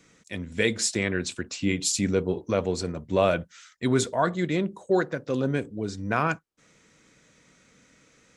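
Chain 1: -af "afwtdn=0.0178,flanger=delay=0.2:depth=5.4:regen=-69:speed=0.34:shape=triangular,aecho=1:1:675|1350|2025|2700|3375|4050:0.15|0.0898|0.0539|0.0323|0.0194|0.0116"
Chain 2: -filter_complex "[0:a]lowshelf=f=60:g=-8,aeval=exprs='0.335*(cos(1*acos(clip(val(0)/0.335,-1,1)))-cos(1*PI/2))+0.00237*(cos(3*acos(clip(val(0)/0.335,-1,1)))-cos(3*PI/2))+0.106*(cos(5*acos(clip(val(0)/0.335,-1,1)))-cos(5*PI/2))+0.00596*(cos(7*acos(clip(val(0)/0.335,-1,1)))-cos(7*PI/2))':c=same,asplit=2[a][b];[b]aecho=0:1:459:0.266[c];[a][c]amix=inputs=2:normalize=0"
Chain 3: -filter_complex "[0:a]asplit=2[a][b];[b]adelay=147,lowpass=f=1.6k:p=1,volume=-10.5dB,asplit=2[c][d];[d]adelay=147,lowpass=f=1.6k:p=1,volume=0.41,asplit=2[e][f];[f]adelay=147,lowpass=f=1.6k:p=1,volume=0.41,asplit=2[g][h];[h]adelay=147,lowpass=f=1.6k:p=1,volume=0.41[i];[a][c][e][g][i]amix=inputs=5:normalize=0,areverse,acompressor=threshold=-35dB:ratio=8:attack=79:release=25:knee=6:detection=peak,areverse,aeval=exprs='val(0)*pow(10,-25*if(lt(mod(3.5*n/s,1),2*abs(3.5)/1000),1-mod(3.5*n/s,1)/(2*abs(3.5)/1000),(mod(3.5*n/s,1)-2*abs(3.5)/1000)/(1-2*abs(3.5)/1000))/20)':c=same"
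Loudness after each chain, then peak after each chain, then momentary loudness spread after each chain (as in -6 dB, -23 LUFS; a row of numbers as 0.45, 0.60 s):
-31.0, -21.5, -38.5 LUFS; -13.5, -8.0, -17.0 dBFS; 18, 10, 8 LU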